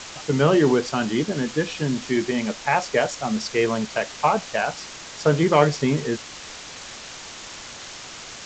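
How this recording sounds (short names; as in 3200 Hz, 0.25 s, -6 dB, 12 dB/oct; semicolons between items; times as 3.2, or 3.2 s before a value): a quantiser's noise floor 6-bit, dither triangular; G.722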